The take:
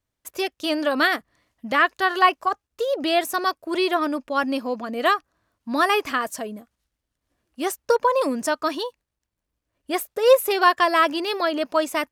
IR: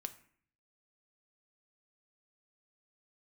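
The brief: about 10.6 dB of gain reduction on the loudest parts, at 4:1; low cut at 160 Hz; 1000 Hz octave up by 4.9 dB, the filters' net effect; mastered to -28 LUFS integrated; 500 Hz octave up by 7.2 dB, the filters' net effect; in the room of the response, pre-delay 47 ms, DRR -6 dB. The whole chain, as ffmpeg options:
-filter_complex "[0:a]highpass=160,equalizer=f=500:t=o:g=7.5,equalizer=f=1k:t=o:g=4,acompressor=threshold=-15dB:ratio=4,asplit=2[a][b];[1:a]atrim=start_sample=2205,adelay=47[c];[b][c]afir=irnorm=-1:irlink=0,volume=8.5dB[d];[a][d]amix=inputs=2:normalize=0,volume=-13.5dB"

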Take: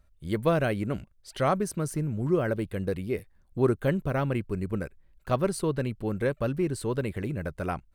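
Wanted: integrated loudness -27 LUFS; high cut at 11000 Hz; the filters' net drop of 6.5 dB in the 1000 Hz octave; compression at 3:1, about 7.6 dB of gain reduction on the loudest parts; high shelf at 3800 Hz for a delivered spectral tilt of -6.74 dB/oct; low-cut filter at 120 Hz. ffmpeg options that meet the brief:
-af "highpass=120,lowpass=11k,equalizer=f=1k:t=o:g=-9,highshelf=f=3.8k:g=-7,acompressor=threshold=-30dB:ratio=3,volume=8dB"

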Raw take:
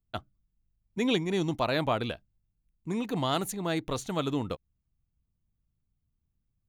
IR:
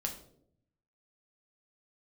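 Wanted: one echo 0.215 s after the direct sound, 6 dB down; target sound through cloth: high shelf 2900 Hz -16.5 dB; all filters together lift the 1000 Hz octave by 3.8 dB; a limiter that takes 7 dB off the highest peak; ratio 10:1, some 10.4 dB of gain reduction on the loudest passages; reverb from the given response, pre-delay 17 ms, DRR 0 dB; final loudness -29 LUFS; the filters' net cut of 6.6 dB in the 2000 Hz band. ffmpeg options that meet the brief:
-filter_complex "[0:a]equalizer=f=1k:t=o:g=8.5,equalizer=f=2k:t=o:g=-5.5,acompressor=threshold=-29dB:ratio=10,alimiter=level_in=0.5dB:limit=-24dB:level=0:latency=1,volume=-0.5dB,aecho=1:1:215:0.501,asplit=2[a][b];[1:a]atrim=start_sample=2205,adelay=17[c];[b][c]afir=irnorm=-1:irlink=0,volume=-1dB[d];[a][d]amix=inputs=2:normalize=0,highshelf=f=2.9k:g=-16.5,volume=3.5dB"

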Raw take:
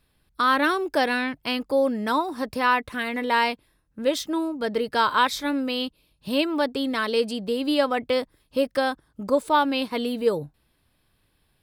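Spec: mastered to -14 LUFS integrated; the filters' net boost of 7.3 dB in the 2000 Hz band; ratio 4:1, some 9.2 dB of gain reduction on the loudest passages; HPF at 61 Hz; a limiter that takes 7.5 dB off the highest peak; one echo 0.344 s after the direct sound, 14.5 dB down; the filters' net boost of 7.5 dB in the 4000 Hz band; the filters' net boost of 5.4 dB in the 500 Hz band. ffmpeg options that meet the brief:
-af "highpass=61,equalizer=f=500:t=o:g=5.5,equalizer=f=2k:t=o:g=8,equalizer=f=4k:t=o:g=6.5,acompressor=threshold=-22dB:ratio=4,alimiter=limit=-17dB:level=0:latency=1,aecho=1:1:344:0.188,volume=13.5dB"

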